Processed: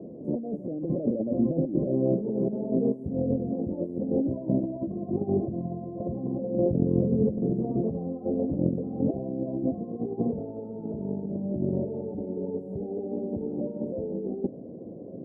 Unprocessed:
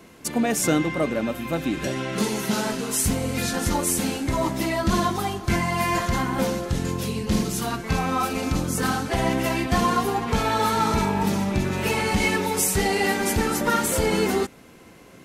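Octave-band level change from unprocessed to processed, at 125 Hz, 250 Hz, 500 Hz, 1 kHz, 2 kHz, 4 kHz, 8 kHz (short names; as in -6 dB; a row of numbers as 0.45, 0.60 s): -4.0 dB, -2.0 dB, -3.0 dB, -21.5 dB, under -40 dB, under -40 dB, under -40 dB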